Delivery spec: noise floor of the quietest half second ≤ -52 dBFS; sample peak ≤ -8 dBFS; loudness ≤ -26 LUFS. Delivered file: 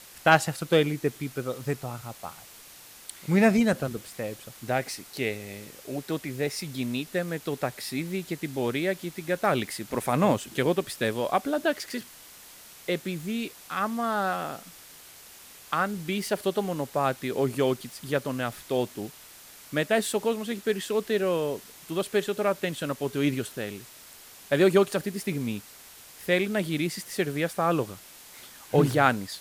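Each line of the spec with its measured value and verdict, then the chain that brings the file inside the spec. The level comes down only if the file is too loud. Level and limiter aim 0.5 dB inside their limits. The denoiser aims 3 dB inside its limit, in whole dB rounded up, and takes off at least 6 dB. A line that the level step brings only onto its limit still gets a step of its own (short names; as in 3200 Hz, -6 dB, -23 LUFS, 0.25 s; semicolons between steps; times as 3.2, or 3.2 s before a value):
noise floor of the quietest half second -49 dBFS: fail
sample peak -6.0 dBFS: fail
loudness -28.0 LUFS: OK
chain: denoiser 6 dB, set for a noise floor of -49 dBFS; limiter -8.5 dBFS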